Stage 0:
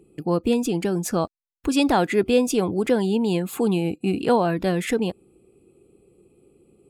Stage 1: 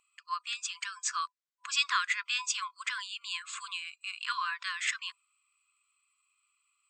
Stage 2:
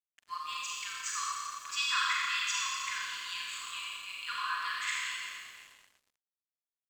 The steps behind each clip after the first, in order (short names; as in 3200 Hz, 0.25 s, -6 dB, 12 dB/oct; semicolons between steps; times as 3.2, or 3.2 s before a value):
FFT band-pass 1000–8200 Hz
Schroeder reverb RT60 2.4 s, combs from 29 ms, DRR -5.5 dB; crossover distortion -47 dBFS; gain -6 dB